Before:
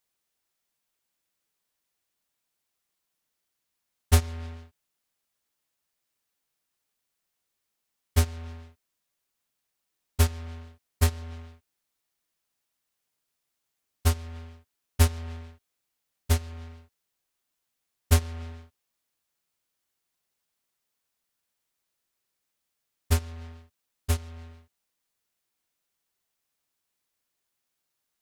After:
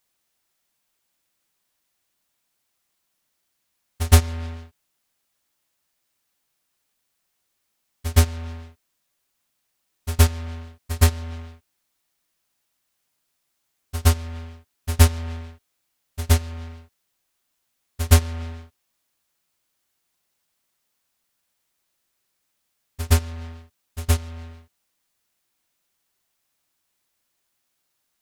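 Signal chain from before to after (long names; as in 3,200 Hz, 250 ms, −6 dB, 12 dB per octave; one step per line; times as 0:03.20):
notch filter 450 Hz, Q 12
echo ahead of the sound 118 ms −13.5 dB
level +6.5 dB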